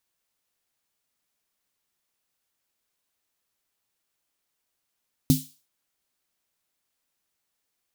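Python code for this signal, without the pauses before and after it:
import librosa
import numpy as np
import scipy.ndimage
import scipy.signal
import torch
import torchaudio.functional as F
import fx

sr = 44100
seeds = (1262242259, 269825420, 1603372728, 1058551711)

y = fx.drum_snare(sr, seeds[0], length_s=0.38, hz=150.0, second_hz=260.0, noise_db=-11.0, noise_from_hz=3400.0, decay_s=0.22, noise_decay_s=0.39)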